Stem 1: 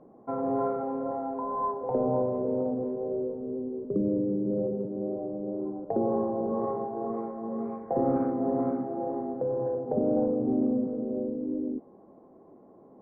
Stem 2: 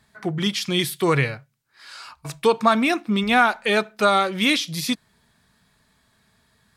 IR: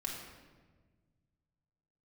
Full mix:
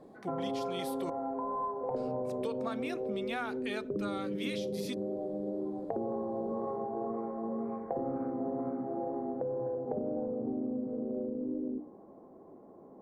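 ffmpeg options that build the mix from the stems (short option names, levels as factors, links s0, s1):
-filter_complex "[0:a]bandreject=f=60:t=h:w=6,bandreject=f=120:t=h:w=6,bandreject=f=180:t=h:w=6,bandreject=f=240:t=h:w=6,bandreject=f=300:t=h:w=6,volume=1.06[s0];[1:a]volume=0.211,asplit=3[s1][s2][s3];[s1]atrim=end=1.1,asetpts=PTS-STARTPTS,afade=t=out:st=1.096:d=0.004:c=hsin[s4];[s2]atrim=start=1.1:end=1.96,asetpts=PTS-STARTPTS,volume=0[s5];[s3]atrim=start=1.96,asetpts=PTS-STARTPTS,afade=t=in:d=0.004:c=hsin[s6];[s4][s5][s6]concat=n=3:v=0:a=1[s7];[s0][s7]amix=inputs=2:normalize=0,acompressor=threshold=0.0251:ratio=6"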